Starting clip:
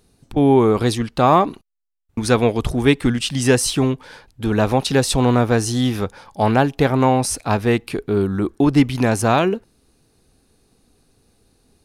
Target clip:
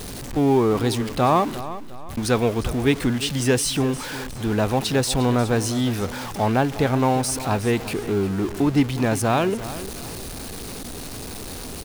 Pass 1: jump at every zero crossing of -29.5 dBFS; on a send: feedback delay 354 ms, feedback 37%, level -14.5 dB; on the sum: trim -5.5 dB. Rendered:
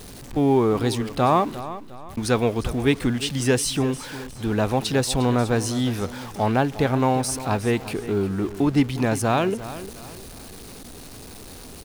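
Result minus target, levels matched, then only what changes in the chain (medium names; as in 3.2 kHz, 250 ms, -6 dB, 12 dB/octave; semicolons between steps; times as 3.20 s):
jump at every zero crossing: distortion -6 dB
change: jump at every zero crossing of -22.5 dBFS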